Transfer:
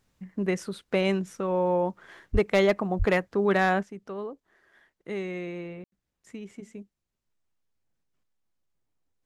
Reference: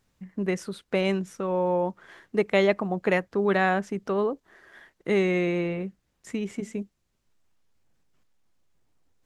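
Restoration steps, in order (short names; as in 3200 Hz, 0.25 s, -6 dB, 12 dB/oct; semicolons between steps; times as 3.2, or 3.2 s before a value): clip repair -14 dBFS; de-plosive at 2.32/2.98; room tone fill 5.84–5.92; gain 0 dB, from 3.83 s +10 dB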